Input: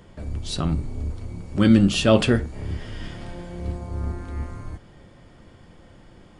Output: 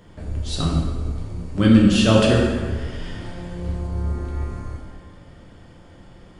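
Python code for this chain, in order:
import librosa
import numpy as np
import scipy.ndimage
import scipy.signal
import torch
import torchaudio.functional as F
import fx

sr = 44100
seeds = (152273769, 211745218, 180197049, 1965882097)

y = fx.rev_plate(x, sr, seeds[0], rt60_s=1.5, hf_ratio=0.75, predelay_ms=0, drr_db=-2.0)
y = y * librosa.db_to_amplitude(-1.5)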